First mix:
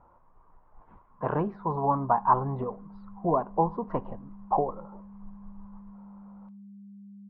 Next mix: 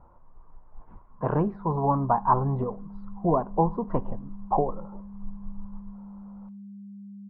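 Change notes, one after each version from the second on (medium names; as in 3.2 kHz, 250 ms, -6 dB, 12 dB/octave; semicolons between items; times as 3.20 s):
master: add tilt EQ -2 dB/octave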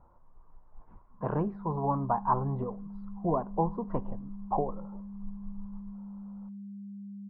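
speech -5.5 dB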